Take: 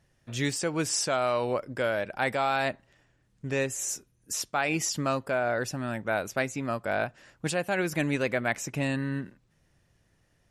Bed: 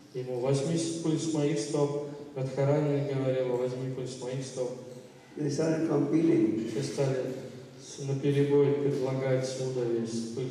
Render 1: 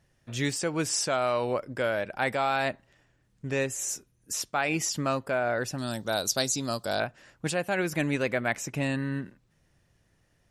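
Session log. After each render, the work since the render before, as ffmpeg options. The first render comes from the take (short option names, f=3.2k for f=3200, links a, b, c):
-filter_complex "[0:a]asettb=1/sr,asplit=3[a][b][c];[a]atrim=end=5.784[d];[b]atrim=start=5.78:end=7,asetpts=PTS-STARTPTS,afade=t=in:d=0.004:c=qsin,afade=t=out:st=1.216:d=0.004:c=qsin,highshelf=f=3.1k:t=q:w=3:g=11.5[e];[c]atrim=start=6.996[f];[d][e]acrossfade=d=0.004:c1=hsin:c2=qsin[g];[g][f]acrossfade=d=0.004:c1=qsin:c2=hsin"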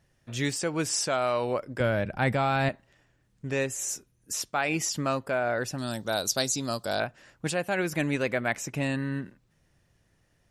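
-filter_complex "[0:a]asettb=1/sr,asplit=3[a][b][c];[a]atrim=end=1.804[d];[b]atrim=start=1.8:end=2.69,asetpts=PTS-STARTPTS,afade=t=in:d=0.004:c=qsin,afade=t=out:st=0.886:d=0.004:c=qsin,bass=f=250:g=14,treble=f=4k:g=-3[e];[c]atrim=start=2.686[f];[d][e]acrossfade=d=0.004:c1=hsin:c2=qsin[g];[g][f]acrossfade=d=0.004:c1=qsin:c2=hsin"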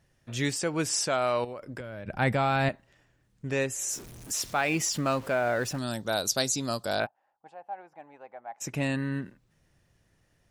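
-filter_complex "[0:a]asettb=1/sr,asplit=3[a][b][c];[a]atrim=end=1.444[d];[b]atrim=start=1.44:end=2.08,asetpts=PTS-STARTPTS,afade=t=in:d=0.004:c=qsin,afade=t=out:st=0.636:d=0.004:c=qsin,acompressor=threshold=-34dB:ratio=20:attack=3.2:release=140:knee=1:detection=peak[e];[c]atrim=start=2.076[f];[d][e]acrossfade=d=0.004:c1=hsin:c2=qsin[g];[g][f]acrossfade=d=0.004:c1=qsin:c2=hsin,asettb=1/sr,asplit=3[h][i][j];[h]atrim=end=3.934[k];[i]atrim=start=3.93:end=5.79,asetpts=PTS-STARTPTS,afade=t=in:d=0.004:c=qsin,afade=t=out:st=1.856:d=0.004:c=qsin,aeval=exprs='val(0)+0.5*0.00944*sgn(val(0))':c=same[l];[j]atrim=start=5.786[m];[k][l]acrossfade=d=0.004:c1=hsin:c2=qsin[n];[n][m]acrossfade=d=0.004:c1=qsin:c2=hsin,asplit=3[o][p][q];[o]afade=t=out:st=7.05:d=0.02[r];[p]bandpass=f=810:t=q:w=10,afade=t=in:st=7.05:d=0.02,afade=t=out:st=8.6:d=0.02[s];[q]afade=t=in:st=8.6:d=0.02[t];[r][s][t]amix=inputs=3:normalize=0"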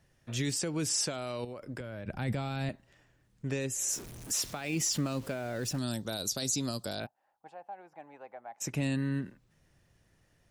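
-filter_complex "[0:a]alimiter=limit=-20.5dB:level=0:latency=1:release=17,acrossover=split=400|3000[a][b][c];[b]acompressor=threshold=-44dB:ratio=3[d];[a][d][c]amix=inputs=3:normalize=0"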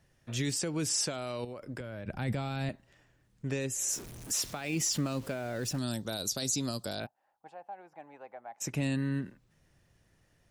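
-af anull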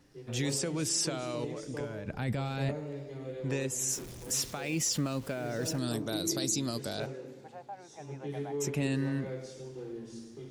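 -filter_complex "[1:a]volume=-12dB[a];[0:a][a]amix=inputs=2:normalize=0"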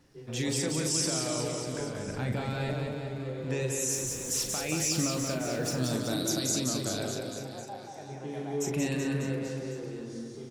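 -filter_complex "[0:a]asplit=2[a][b];[b]adelay=39,volume=-7dB[c];[a][c]amix=inputs=2:normalize=0,aecho=1:1:180|378|595.8|835.4|1099:0.631|0.398|0.251|0.158|0.1"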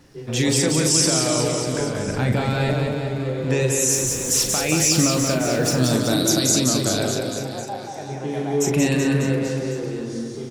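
-af "volume=11dB"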